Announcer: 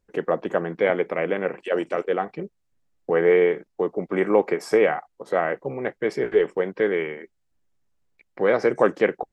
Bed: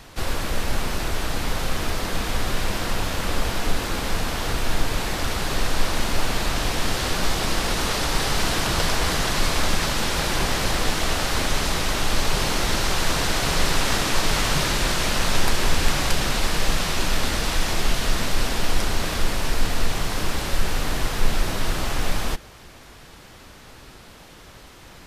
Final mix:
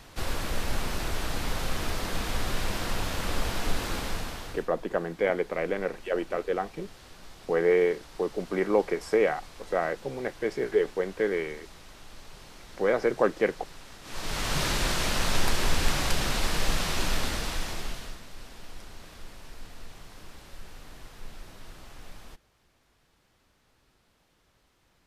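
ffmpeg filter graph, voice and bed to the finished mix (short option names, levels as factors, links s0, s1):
-filter_complex "[0:a]adelay=4400,volume=0.562[s0];[1:a]volume=5.96,afade=t=out:st=3.93:d=0.76:silence=0.0944061,afade=t=in:st=14.02:d=0.64:silence=0.0891251,afade=t=out:st=17.08:d=1.12:silence=0.133352[s1];[s0][s1]amix=inputs=2:normalize=0"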